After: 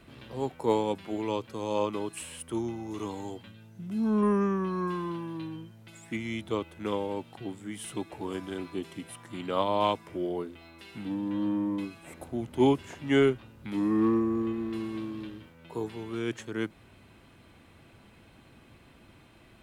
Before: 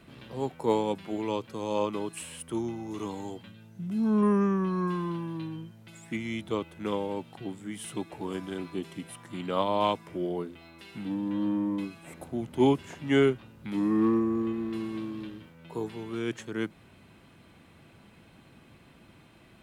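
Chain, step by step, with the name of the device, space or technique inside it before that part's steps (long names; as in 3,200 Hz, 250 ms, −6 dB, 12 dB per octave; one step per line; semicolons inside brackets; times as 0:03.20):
low shelf boost with a cut just above (low-shelf EQ 66 Hz +6 dB; parametric band 170 Hz −5.5 dB 0.51 octaves)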